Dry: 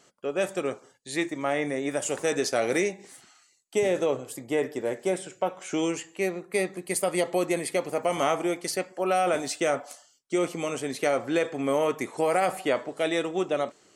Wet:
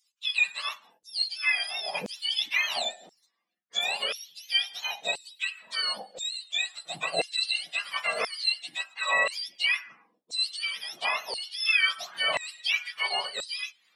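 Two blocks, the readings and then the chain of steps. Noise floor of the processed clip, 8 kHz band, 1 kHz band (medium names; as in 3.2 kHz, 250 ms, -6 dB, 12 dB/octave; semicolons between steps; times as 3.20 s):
-74 dBFS, -5.5 dB, -5.5 dB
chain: spectrum inverted on a logarithmic axis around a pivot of 1.2 kHz; LFO high-pass saw down 0.97 Hz 510–6200 Hz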